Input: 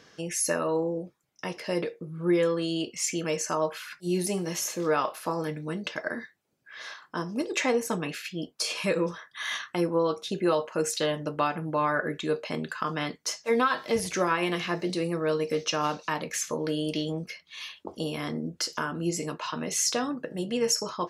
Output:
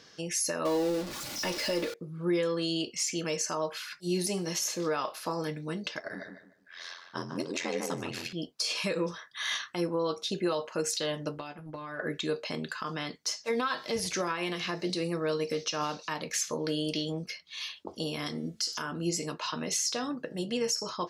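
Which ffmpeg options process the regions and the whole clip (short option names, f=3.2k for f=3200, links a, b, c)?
-filter_complex "[0:a]asettb=1/sr,asplit=3[a][b][c];[a]atrim=end=0.654[d];[b]atrim=start=0.65:end=1.94,asetpts=PTS-STARTPTS,afade=t=in:d=0.004:c=qsin,afade=t=out:st=1.286:d=0.004:c=qsin,aeval=exprs='val(0)+0.5*0.0224*sgn(val(0))':c=same,aecho=1:1:3.5:0.47,atrim=end_sample=56889,acrusher=bits=9:dc=4:mix=0:aa=0.000001[e];[c]atrim=start=1.936[f];[d][e]acrossfade=d=0.004:c1=hsin:c2=qsin[g];[g][f]acrossfade=d=0.004:c1=qsin:c2=hsin,asettb=1/sr,asplit=3[h][i][j];[h]atrim=end=5.994[k];[i]atrim=start=5.99:end=8.33,asetpts=PTS-STARTPTS,afade=t=in:d=0.004:c=qsin,afade=t=out:st=2.336:d=0.004:c=qsin,aeval=exprs='val(0)*sin(2*PI*43*n/s)':c=same,asplit=2[l][m];[m]adelay=150,lowpass=f=2.1k:p=1,volume=-5.5dB,asplit=2[n][o];[o]adelay=150,lowpass=f=2.1k:p=1,volume=0.29,asplit=2[p][q];[q]adelay=150,lowpass=f=2.1k:p=1,volume=0.29,asplit=2[r][s];[s]adelay=150,lowpass=f=2.1k:p=1,volume=0.29[t];[l][n][p][r][t]amix=inputs=5:normalize=0,atrim=end_sample=103194[u];[j]atrim=start=8.326[v];[k][u]acrossfade=d=0.004:c1=hsin:c2=qsin[w];[w][v]acrossfade=d=0.004:c1=qsin:c2=hsin,asettb=1/sr,asplit=3[x][y][z];[x]atrim=end=11.384[aa];[y]atrim=start=11.38:end=12,asetpts=PTS-STARTPTS,afade=t=in:d=0.004:c=qsin,afade=t=out:st=0.616:d=0.004:c=qsin,agate=range=-10dB:threshold=-32dB:ratio=16:release=100:detection=peak,acompressor=threshold=-33dB:ratio=10:attack=3.2:release=140:knee=1:detection=peak,asplit=2[ab][ac];[ac]adelay=14,volume=-7.5dB[ad];[ab][ad]amix=inputs=2:normalize=0,atrim=end_sample=27342[ae];[z]atrim=start=11.996[af];[aa][ae]acrossfade=d=0.004:c1=hsin:c2=qsin[ag];[ag][af]acrossfade=d=0.004:c1=qsin:c2=hsin,asettb=1/sr,asplit=3[ah][ai][aj];[ah]atrim=end=18.264[ak];[ai]atrim=start=18.26:end=18.82,asetpts=PTS-STARTPTS,afade=t=in:d=0.004:c=qsin,afade=t=out:st=0.556:d=0.004:c=qsin,equalizer=f=8.8k:t=o:w=2.7:g=11,bandreject=f=580:w=14,bandreject=f=221.1:t=h:w=4,bandreject=f=442.2:t=h:w=4,bandreject=f=663.3:t=h:w=4,bandreject=f=884.4:t=h:w=4,bandreject=f=1.1055k:t=h:w=4,bandreject=f=1.3266k:t=h:w=4,bandreject=f=1.5477k:t=h:w=4,bandreject=f=1.7688k:t=h:w=4,bandreject=f=1.9899k:t=h:w=4,bandreject=f=2.211k:t=h:w=4,bandreject=f=2.4321k:t=h:w=4,bandreject=f=2.6532k:t=h:w=4,bandreject=f=2.8743k:t=h:w=4,bandreject=f=3.0954k:t=h:w=4,bandreject=f=3.3165k:t=h:w=4,bandreject=f=3.5376k:t=h:w=4,bandreject=f=3.7587k:t=h:w=4,bandreject=f=3.9798k:t=h:w=4[al];[aj]atrim=start=18.816[am];[ak][al]acrossfade=d=0.004:c1=hsin:c2=qsin[an];[an][am]acrossfade=d=0.004:c1=qsin:c2=hsin,equalizer=f=4.7k:w=1.2:g=7.5,alimiter=limit=-17.5dB:level=0:latency=1:release=143,volume=-2.5dB"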